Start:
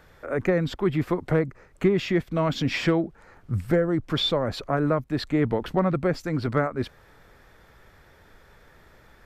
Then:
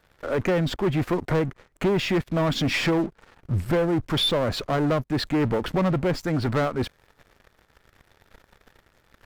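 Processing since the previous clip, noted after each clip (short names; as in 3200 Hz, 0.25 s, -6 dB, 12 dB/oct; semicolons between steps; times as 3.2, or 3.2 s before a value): half-wave gain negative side -3 dB; sample leveller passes 3; gain -5 dB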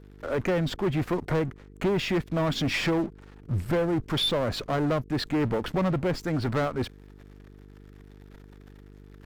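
buzz 50 Hz, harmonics 9, -46 dBFS -4 dB/oct; gain -3 dB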